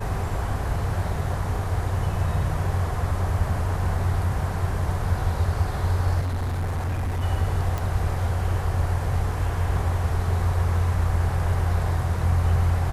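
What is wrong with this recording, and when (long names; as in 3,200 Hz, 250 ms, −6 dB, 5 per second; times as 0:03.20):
0:06.20–0:07.24: clipping −23 dBFS
0:07.78: click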